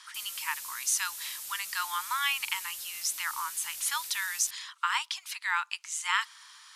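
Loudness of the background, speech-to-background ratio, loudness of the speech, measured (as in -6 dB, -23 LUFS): -38.0 LUFS, 6.5 dB, -31.5 LUFS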